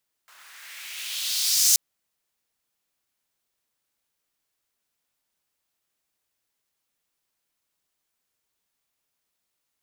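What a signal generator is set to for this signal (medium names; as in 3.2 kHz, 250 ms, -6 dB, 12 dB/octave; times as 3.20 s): swept filtered noise pink, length 1.48 s highpass, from 1.2 kHz, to 6.4 kHz, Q 2.1, gain ramp +39 dB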